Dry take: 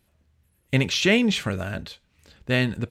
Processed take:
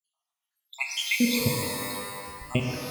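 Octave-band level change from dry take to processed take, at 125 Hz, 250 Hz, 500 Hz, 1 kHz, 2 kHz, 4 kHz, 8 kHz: -6.0 dB, -4.5 dB, -7.0 dB, +1.5 dB, -4.5 dB, -3.5 dB, +3.0 dB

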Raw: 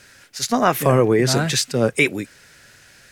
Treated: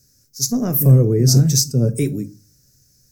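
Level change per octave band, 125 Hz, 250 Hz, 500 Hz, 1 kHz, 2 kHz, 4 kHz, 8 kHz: +10.0 dB, +2.5 dB, -5.0 dB, under -15 dB, under -15 dB, -0.5 dB, +5.0 dB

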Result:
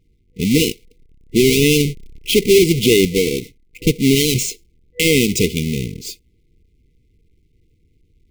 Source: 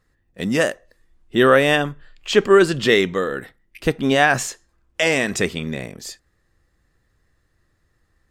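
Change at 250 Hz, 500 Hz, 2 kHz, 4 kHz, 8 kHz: +6.0 dB, +1.5 dB, -3.5 dB, +6.0 dB, +9.0 dB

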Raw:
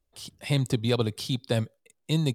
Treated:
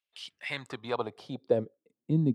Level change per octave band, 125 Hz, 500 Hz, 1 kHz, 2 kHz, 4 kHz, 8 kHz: -7.0 dB, -1.0 dB, +1.5 dB, -1.5 dB, -10.5 dB, under -15 dB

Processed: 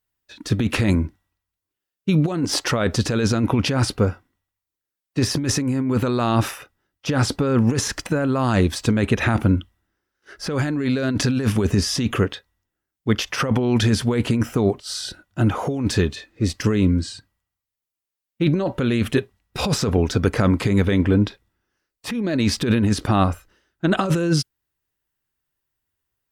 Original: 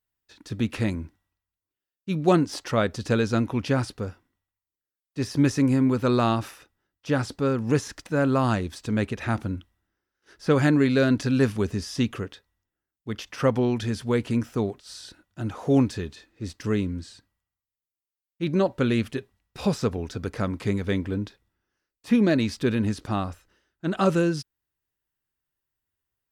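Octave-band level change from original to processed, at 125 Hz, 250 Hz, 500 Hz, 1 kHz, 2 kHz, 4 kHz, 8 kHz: +6.5 dB, +3.5 dB, +2.0 dB, +3.5 dB, +5.0 dB, +9.5 dB, +12.0 dB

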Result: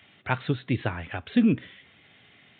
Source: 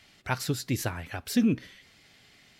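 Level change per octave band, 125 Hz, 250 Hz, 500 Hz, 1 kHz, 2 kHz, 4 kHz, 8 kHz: +3.0 dB, +3.0 dB, +3.0 dB, +3.0 dB, +3.0 dB, -3.0 dB, under -40 dB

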